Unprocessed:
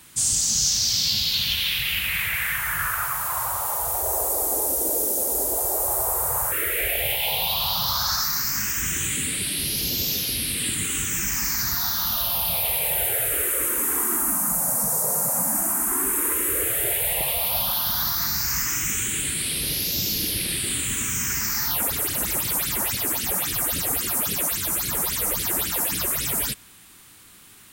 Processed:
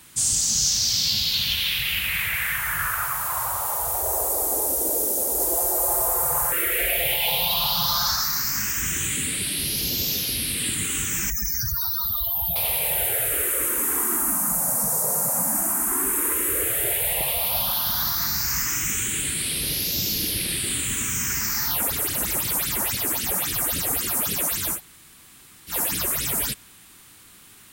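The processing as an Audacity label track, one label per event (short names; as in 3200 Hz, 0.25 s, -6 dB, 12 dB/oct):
5.390000	8.120000	comb 5.8 ms
11.300000	12.560000	spectral contrast raised exponent 3.1
24.760000	25.710000	room tone, crossfade 0.10 s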